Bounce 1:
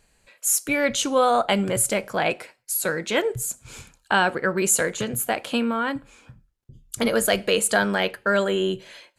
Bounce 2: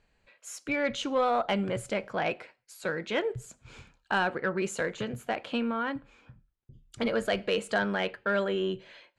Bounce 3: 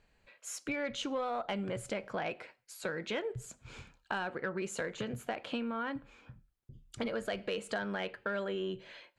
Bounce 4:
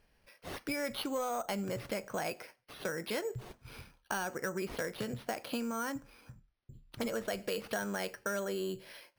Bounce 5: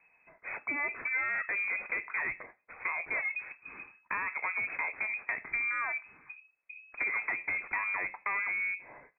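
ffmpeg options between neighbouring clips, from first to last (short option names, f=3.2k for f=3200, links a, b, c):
-af "lowpass=3.6k,aeval=exprs='0.473*(cos(1*acos(clip(val(0)/0.473,-1,1)))-cos(1*PI/2))+0.0266*(cos(5*acos(clip(val(0)/0.473,-1,1)))-cos(5*PI/2))':c=same,volume=-8dB"
-af "acompressor=threshold=-34dB:ratio=4"
-af "acrusher=samples=6:mix=1:aa=0.000001"
-af "aresample=8000,aeval=exprs='clip(val(0),-1,0.0188)':c=same,aresample=44100,lowpass=f=2.2k:t=q:w=0.5098,lowpass=f=2.2k:t=q:w=0.6013,lowpass=f=2.2k:t=q:w=0.9,lowpass=f=2.2k:t=q:w=2.563,afreqshift=-2600,volume=4dB"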